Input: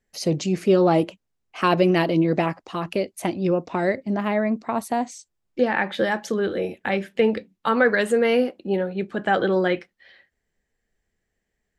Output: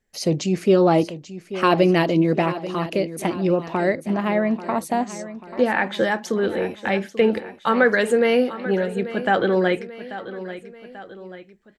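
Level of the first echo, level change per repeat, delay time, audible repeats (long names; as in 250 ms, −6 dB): −14.0 dB, −6.0 dB, 838 ms, 3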